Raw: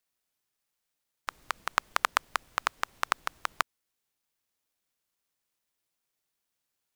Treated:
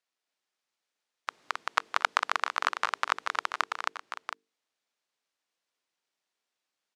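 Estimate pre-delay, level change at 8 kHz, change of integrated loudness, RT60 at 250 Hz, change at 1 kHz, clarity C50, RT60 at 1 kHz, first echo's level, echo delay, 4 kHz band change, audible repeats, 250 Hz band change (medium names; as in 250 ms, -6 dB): no reverb, -3.0 dB, +1.5 dB, no reverb, +2.0 dB, no reverb, no reverb, -3.5 dB, 267 ms, +1.5 dB, 4, -1.5 dB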